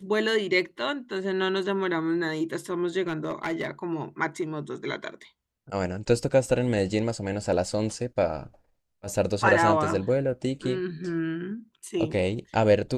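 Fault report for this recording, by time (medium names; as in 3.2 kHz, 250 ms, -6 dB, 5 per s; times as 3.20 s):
3.07–3.71 s: clipped -23.5 dBFS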